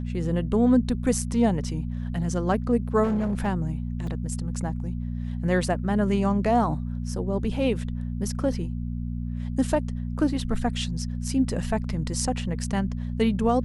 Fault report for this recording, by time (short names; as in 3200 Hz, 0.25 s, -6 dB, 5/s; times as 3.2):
hum 60 Hz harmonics 4 -30 dBFS
3.03–3.48 clipped -21 dBFS
4.07 gap 2.9 ms